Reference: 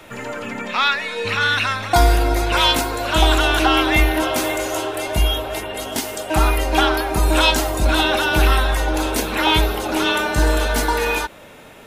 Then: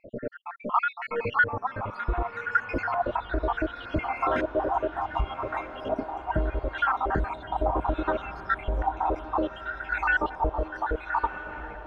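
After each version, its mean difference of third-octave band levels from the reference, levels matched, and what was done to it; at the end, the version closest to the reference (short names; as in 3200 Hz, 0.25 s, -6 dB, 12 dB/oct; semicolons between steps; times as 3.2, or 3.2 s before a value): 15.0 dB: random spectral dropouts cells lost 73%; compressor, threshold -23 dBFS, peak gain reduction 10.5 dB; LFO low-pass saw up 0.68 Hz 730–1700 Hz; diffused feedback echo 1.276 s, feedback 46%, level -12 dB; gain -1 dB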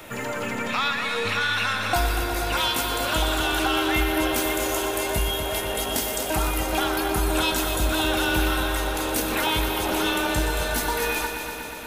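5.0 dB: high shelf 11000 Hz +11.5 dB; compressor 2.5:1, threshold -25 dBFS, peak gain reduction 11 dB; on a send: multi-head echo 0.121 s, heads first and second, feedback 71%, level -10.5 dB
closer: second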